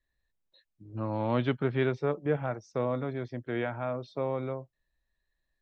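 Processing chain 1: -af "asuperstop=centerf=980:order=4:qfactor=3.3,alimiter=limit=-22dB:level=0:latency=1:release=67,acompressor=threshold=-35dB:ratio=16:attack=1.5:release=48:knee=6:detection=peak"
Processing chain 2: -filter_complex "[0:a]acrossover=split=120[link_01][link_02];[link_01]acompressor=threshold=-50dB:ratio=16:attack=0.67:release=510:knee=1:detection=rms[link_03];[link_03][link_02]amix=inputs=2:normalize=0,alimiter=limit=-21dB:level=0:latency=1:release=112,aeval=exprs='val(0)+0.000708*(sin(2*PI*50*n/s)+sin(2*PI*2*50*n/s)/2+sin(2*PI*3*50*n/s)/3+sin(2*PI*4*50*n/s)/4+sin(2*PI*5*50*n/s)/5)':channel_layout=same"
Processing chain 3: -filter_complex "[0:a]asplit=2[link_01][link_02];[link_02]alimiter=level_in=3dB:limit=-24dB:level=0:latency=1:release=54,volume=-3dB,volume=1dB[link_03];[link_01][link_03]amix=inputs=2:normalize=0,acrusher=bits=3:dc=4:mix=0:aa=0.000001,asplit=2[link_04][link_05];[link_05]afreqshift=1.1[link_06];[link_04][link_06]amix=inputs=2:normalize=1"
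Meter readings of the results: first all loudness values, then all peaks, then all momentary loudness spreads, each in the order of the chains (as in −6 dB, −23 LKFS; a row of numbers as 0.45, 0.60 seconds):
−42.0, −33.5, −34.0 LKFS; −29.0, −21.0, −17.0 dBFS; 4, 7, 6 LU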